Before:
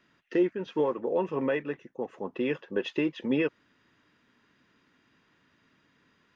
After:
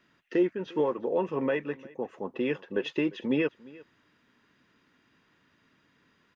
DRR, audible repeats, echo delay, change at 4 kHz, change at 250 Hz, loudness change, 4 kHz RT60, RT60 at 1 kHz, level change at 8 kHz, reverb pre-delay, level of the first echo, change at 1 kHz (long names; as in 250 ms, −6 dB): no reverb audible, 1, 350 ms, 0.0 dB, 0.0 dB, 0.0 dB, no reverb audible, no reverb audible, can't be measured, no reverb audible, −22.0 dB, 0.0 dB